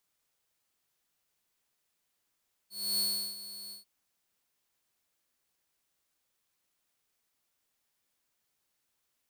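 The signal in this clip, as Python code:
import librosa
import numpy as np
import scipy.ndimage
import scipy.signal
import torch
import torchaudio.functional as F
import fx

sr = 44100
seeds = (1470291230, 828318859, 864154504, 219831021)

y = fx.adsr_tone(sr, wave='saw', hz=4390.0, attack_ms=287.0, decay_ms=361.0, sustain_db=-15.0, held_s=1.01, release_ms=135.0, level_db=-24.5)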